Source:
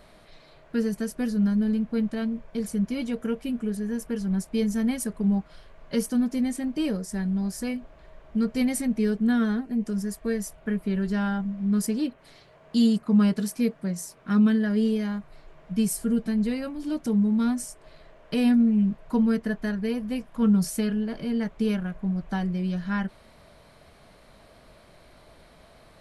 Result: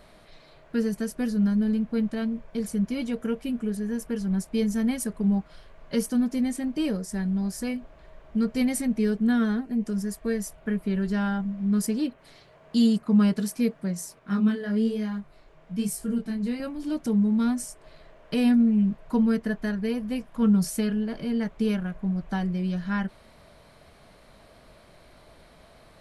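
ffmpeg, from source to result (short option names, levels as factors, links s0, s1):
-filter_complex "[0:a]asettb=1/sr,asplit=3[s0][s1][s2];[s0]atrim=end=14.194[s3];[s1]atrim=start=14.19:end=16.6,asetpts=PTS-STARTPTS,afade=t=in:d=0.004:c=qsin,afade=t=out:st=2.406:d=0.004:c=qsin,flanger=delay=18.5:depth=6.9:speed=1.1[s4];[s2]atrim=start=16.596[s5];[s3][s4]acrossfade=d=0.004:c1=hsin:c2=qsin[s6];[s6][s5]acrossfade=d=0.004:c1=qsin:c2=hsin"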